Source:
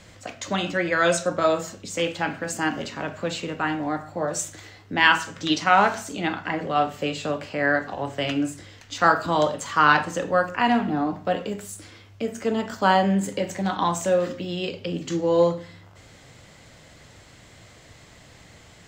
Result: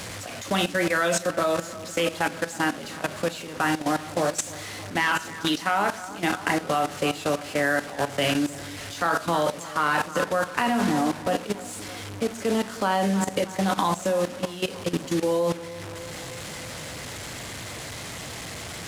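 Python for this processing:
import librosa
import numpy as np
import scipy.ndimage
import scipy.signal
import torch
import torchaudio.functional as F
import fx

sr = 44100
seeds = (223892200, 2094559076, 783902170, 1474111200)

y = fx.delta_mod(x, sr, bps=64000, step_db=-28.0)
y = fx.highpass(y, sr, hz=82.0, slope=6)
y = np.sign(y) * np.maximum(np.abs(y) - 10.0 ** (-48.5 / 20.0), 0.0)
y = fx.echo_bbd(y, sr, ms=308, stages=4096, feedback_pct=61, wet_db=-14.5)
y = fx.level_steps(y, sr, step_db=14)
y = y * 10.0 ** (5.5 / 20.0)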